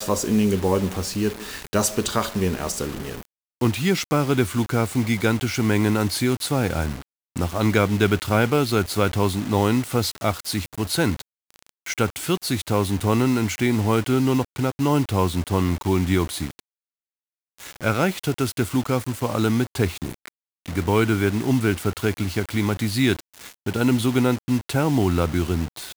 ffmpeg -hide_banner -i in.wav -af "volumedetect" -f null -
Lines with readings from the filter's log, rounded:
mean_volume: -22.5 dB
max_volume: -5.5 dB